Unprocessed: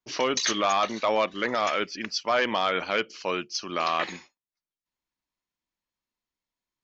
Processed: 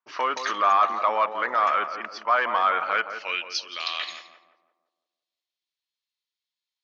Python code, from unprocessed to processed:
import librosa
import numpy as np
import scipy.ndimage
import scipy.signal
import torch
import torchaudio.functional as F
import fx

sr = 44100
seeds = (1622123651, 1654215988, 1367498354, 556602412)

y = fx.filter_sweep_bandpass(x, sr, from_hz=1200.0, to_hz=3800.0, start_s=2.9, end_s=3.61, q=2.2)
y = fx.echo_tape(y, sr, ms=171, feedback_pct=54, wet_db=-6.5, lp_hz=1100.0, drive_db=16.0, wow_cents=8)
y = y * librosa.db_to_amplitude(7.5)